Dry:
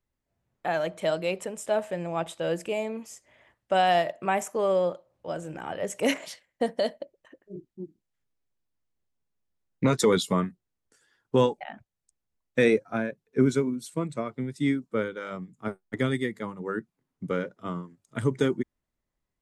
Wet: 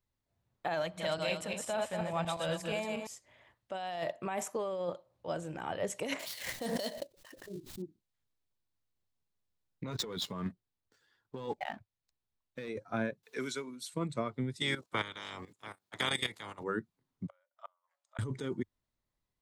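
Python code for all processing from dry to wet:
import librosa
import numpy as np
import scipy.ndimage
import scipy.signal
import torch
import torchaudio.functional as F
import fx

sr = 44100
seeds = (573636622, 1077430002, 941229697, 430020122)

y = fx.chain(x, sr, fx.reverse_delay_fb(ms=119, feedback_pct=48, wet_db=-3.0),
    fx.peak_eq(hz=390.0, db=-9.5, octaves=1.1), at=(0.82, 3.07))
y = fx.chain(y, sr, fx.dead_time(dead_ms=0.063),
    fx.high_shelf(hz=3200.0, db=10.5),
    fx.pre_swell(db_per_s=90.0), at=(6.19, 7.82))
y = fx.chain(y, sr, fx.median_filter(points=5),
    fx.leveller(passes=1), at=(9.91, 12.69))
y = fx.chain(y, sr, fx.highpass(hz=1400.0, slope=6),
    fx.band_squash(depth_pct=70), at=(13.23, 13.94))
y = fx.spec_clip(y, sr, under_db=27, at=(14.6, 16.62), fade=0.02)
y = fx.highpass(y, sr, hz=110.0, slope=12, at=(14.6, 16.62), fade=0.02)
y = fx.level_steps(y, sr, step_db=14, at=(14.6, 16.62), fade=0.02)
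y = fx.chain(y, sr, fx.high_shelf(hz=2900.0, db=-10.5),
    fx.gate_flip(shuts_db=-26.0, range_db=-36),
    fx.brickwall_bandpass(low_hz=530.0, high_hz=9100.0), at=(17.27, 18.19))
y = fx.graphic_eq_15(y, sr, hz=(100, 1000, 4000), db=(6, 3, 6))
y = fx.over_compress(y, sr, threshold_db=-27.0, ratio=-1.0)
y = y * librosa.db_to_amplitude(-7.5)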